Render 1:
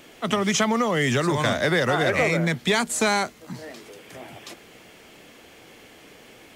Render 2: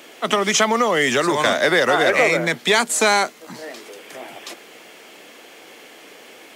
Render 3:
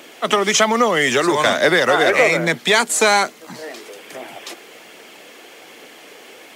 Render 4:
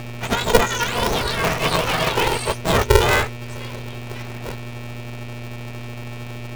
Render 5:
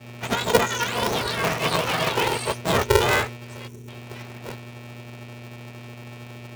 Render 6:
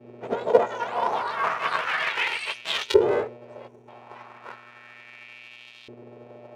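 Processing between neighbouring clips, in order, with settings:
HPF 320 Hz 12 dB/oct; gain +6 dB
phaser 1.2 Hz, delay 2.9 ms, feedback 23%; gain +1.5 dB
spectrum mirrored in octaves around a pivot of 1200 Hz; buzz 120 Hz, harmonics 20, -29 dBFS -4 dB/oct; polarity switched at an audio rate 240 Hz; gain -3 dB
spectral gain 3.68–3.88, 470–5400 Hz -14 dB; expander -27 dBFS; HPF 94 Hz; gain -3 dB
LFO band-pass saw up 0.34 Hz 370–3700 Hz; gain +5 dB

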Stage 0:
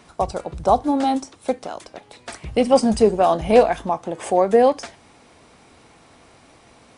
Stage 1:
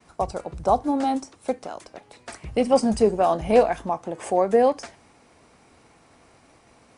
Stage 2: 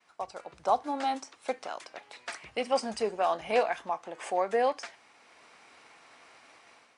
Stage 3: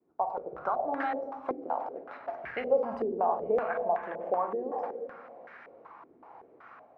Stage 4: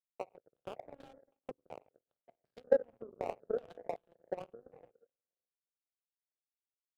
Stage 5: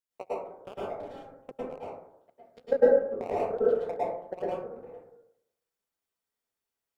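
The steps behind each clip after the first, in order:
bell 3500 Hz -4.5 dB 0.53 oct; expander -49 dBFS; gain -3.5 dB
AGC gain up to 10 dB; band-pass 2400 Hz, Q 0.64; gain -5 dB
compressor 6:1, threshold -32 dBFS, peak gain reduction 12 dB; on a send at -4 dB: reverb RT60 1.8 s, pre-delay 15 ms; on the sum: stepped low-pass 5.3 Hz 350–1700 Hz
Wiener smoothing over 9 samples; power-law curve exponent 3; graphic EQ 125/500/1000/2000 Hz +7/+8/-8/-10 dB
plate-style reverb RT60 0.72 s, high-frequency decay 0.35×, pre-delay 95 ms, DRR -9.5 dB

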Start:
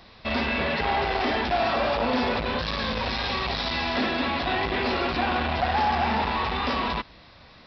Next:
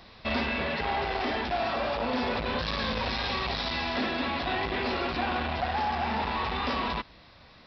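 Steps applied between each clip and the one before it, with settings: vocal rider 0.5 s; gain -4 dB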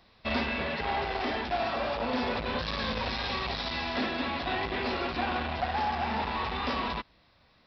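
upward expander 1.5:1, over -46 dBFS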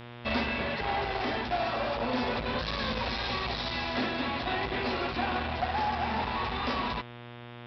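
buzz 120 Hz, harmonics 31, -45 dBFS -4 dB/oct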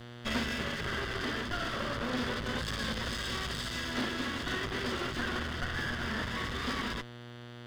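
minimum comb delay 0.62 ms; gain -1.5 dB

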